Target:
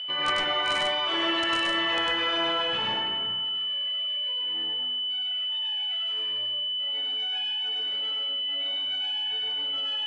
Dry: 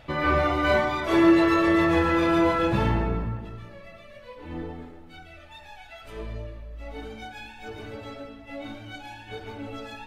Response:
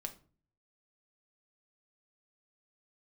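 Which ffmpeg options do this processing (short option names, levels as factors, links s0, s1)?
-filter_complex "[0:a]aeval=exprs='val(0)+0.0355*sin(2*PI*3000*n/s)':c=same,bandpass=f=3200:t=q:w=0.74:csg=0,aeval=exprs='(mod(7.94*val(0)+1,2)-1)/7.94':c=same,highshelf=f=2800:g=-9.5,asplit=2[s0][s1];[1:a]atrim=start_sample=2205,adelay=100[s2];[s1][s2]afir=irnorm=-1:irlink=0,volume=1.26[s3];[s0][s3]amix=inputs=2:normalize=0,volume=1.41" -ar 22050 -c:a libmp3lame -b:a 64k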